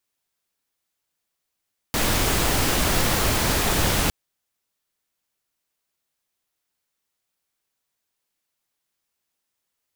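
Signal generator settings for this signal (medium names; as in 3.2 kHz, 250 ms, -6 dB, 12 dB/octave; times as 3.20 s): noise pink, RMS -21 dBFS 2.16 s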